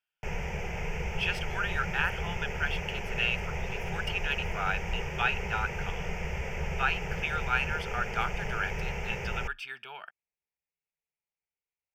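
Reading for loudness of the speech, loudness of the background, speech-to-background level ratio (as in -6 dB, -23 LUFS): -33.0 LUFS, -36.0 LUFS, 3.0 dB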